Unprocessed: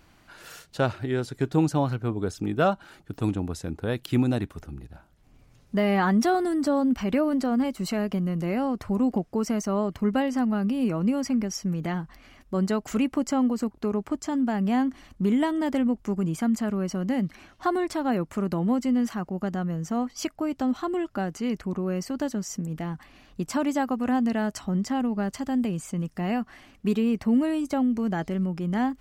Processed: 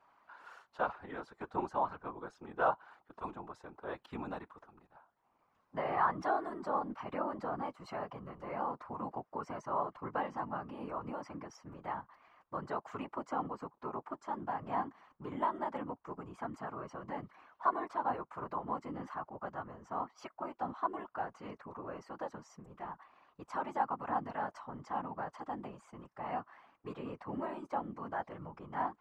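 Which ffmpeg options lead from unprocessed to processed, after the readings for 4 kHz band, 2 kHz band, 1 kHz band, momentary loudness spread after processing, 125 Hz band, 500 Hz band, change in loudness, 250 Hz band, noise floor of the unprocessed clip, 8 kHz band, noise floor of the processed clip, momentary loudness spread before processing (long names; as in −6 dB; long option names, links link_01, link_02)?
−20.0 dB, −9.5 dB, −3.5 dB, 13 LU, −20.5 dB, −12.0 dB, −13.0 dB, −21.5 dB, −57 dBFS, below −25 dB, −76 dBFS, 8 LU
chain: -af "bandpass=frequency=1000:width_type=q:width=3.1:csg=0,afftfilt=real='hypot(re,im)*cos(2*PI*random(0))':imag='hypot(re,im)*sin(2*PI*random(1))':win_size=512:overlap=0.75,volume=6.5dB"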